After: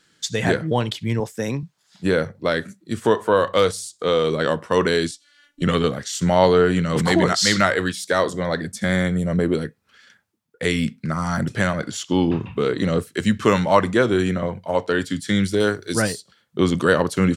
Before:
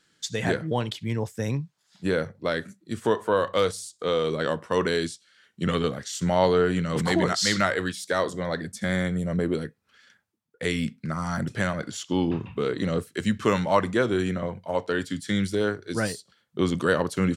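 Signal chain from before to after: 1.20–1.63 s: high-pass 170 Hz; 5.11–5.62 s: robot voice 291 Hz; 15.60–16.02 s: treble shelf 5.2 kHz +12 dB; trim +5.5 dB

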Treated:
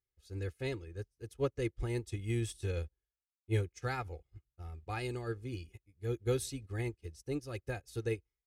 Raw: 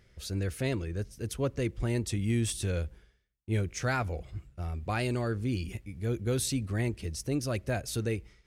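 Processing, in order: comb 2.4 ms, depth 61%; upward expansion 2.5:1, over -47 dBFS; trim -2 dB

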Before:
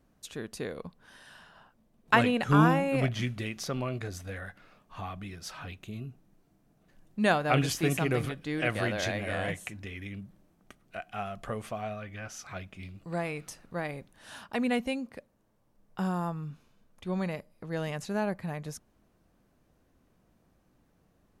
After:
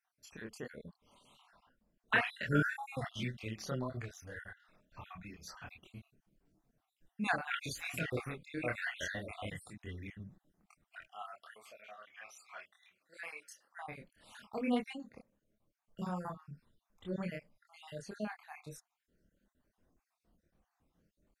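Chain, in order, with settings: random holes in the spectrogram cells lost 56%; 11.11–13.78 s: high-pass 870 Hz 12 dB/octave; dynamic bell 1.8 kHz, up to +4 dB, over -49 dBFS, Q 0.78; chorus voices 4, 1.1 Hz, delay 26 ms, depth 3 ms; trim -3.5 dB

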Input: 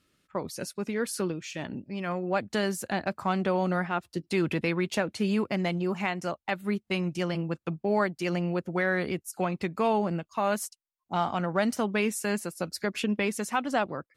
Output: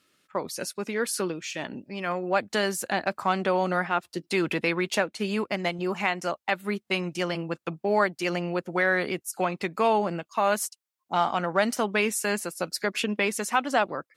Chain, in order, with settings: high-pass 420 Hz 6 dB/octave; 5.04–5.79 s: upward expansion 1.5:1, over -43 dBFS; trim +5 dB

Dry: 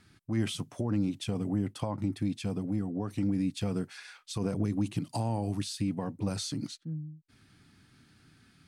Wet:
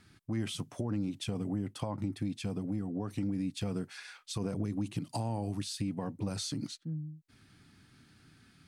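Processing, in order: compression 2:1, threshold -33 dBFS, peak gain reduction 5.5 dB

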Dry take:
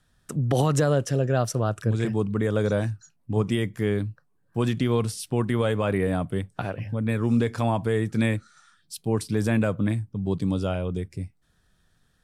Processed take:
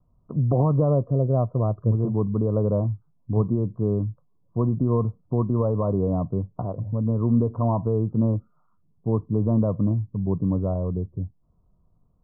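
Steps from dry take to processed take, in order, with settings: steep low-pass 1.1 kHz 72 dB/octave; peaking EQ 390 Hz -4.5 dB 1.8 oct; band-stop 820 Hz, Q 5.3; trim +4 dB

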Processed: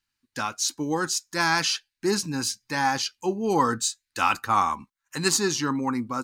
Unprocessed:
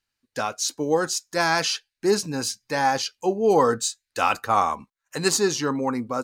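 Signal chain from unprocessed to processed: high-order bell 550 Hz -9.5 dB 1 oct

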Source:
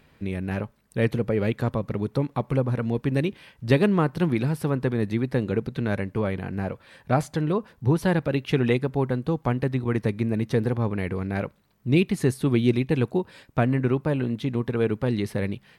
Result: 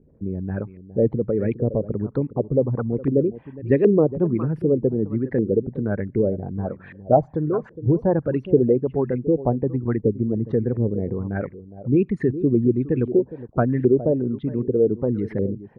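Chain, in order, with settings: resonances exaggerated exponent 2; delay 412 ms -15.5 dB; LFO low-pass saw up 1.3 Hz 390–2200 Hz; trim +1 dB

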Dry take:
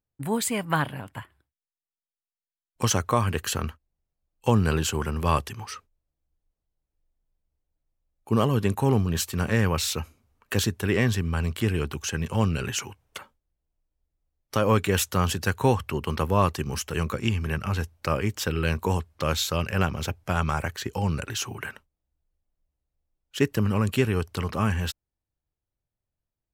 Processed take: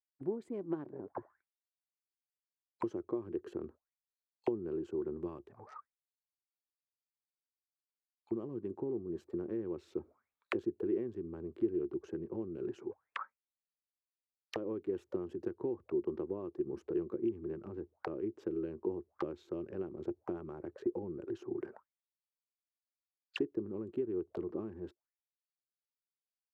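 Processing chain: local Wiener filter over 15 samples; 5.17–8.70 s: peaking EQ 420 Hz -6.5 dB 1.3 oct; compression 8:1, threshold -31 dBFS, peak gain reduction 16 dB; auto-wah 350–4900 Hz, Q 11, down, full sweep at -34.5 dBFS; trim +13 dB

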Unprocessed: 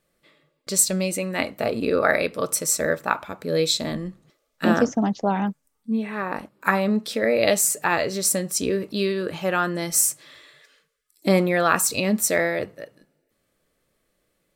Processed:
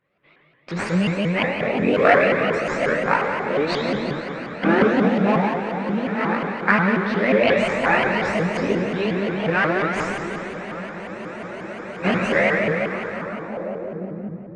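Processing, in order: low-pass 8.2 kHz 24 dB/octave; spectral gate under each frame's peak -25 dB strong; high-pass 100 Hz; echo that smears into a reverb 1245 ms, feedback 69%, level -14.5 dB; chorus voices 4, 0.66 Hz, delay 21 ms, depth 1.2 ms; in parallel at -6.5 dB: sample-rate reducer 3.1 kHz, jitter 20%; on the sum: low-pass sweep 2.3 kHz -> 130 Hz, 13.05–14.39 s; reverberation RT60 2.8 s, pre-delay 13 ms, DRR -0.5 dB; spectral freeze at 11.11 s, 0.92 s; vibrato with a chosen wave saw up 5.6 Hz, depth 250 cents

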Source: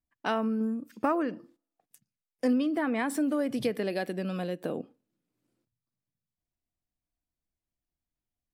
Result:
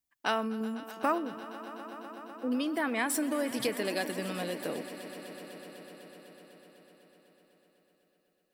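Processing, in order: 1.18–2.52 s: Gaussian low-pass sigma 16 samples; tilt EQ +2.5 dB/octave; echo with a slow build-up 125 ms, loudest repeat 5, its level -18 dB

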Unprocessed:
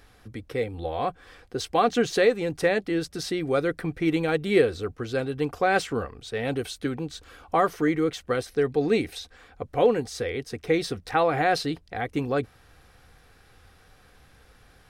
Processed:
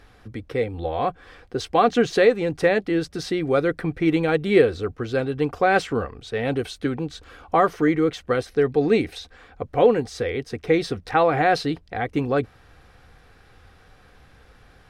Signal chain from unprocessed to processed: low-pass 3.7 kHz 6 dB/octave; trim +4 dB

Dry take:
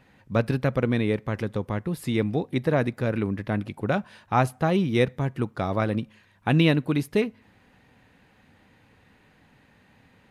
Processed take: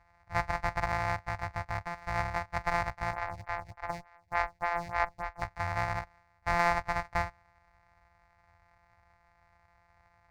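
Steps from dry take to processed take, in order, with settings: sorted samples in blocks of 256 samples; FFT filter 100 Hz 0 dB, 160 Hz -17 dB, 260 Hz -20 dB, 420 Hz -23 dB, 750 Hz +4 dB, 1.4 kHz -2 dB, 2.1 kHz +3 dB, 3.1 kHz -19 dB, 4.5 kHz -9 dB, 13 kHz -25 dB; 3.13–5.42 s: lamp-driven phase shifter 3.4 Hz; trim -2 dB

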